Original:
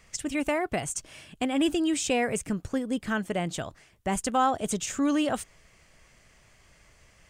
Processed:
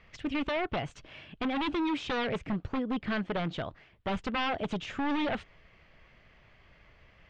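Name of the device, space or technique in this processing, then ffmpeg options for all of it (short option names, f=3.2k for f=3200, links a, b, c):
synthesiser wavefolder: -af "aeval=exprs='0.0562*(abs(mod(val(0)/0.0562+3,4)-2)-1)':c=same,lowpass=f=3.6k:w=0.5412,lowpass=f=3.6k:w=1.3066"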